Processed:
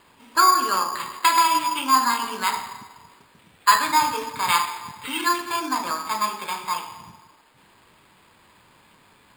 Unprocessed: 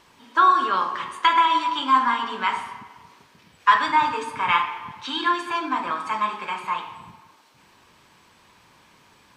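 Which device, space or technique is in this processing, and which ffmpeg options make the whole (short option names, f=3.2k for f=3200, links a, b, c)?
crushed at another speed: -af "asetrate=22050,aresample=44100,acrusher=samples=15:mix=1:aa=0.000001,asetrate=88200,aresample=44100"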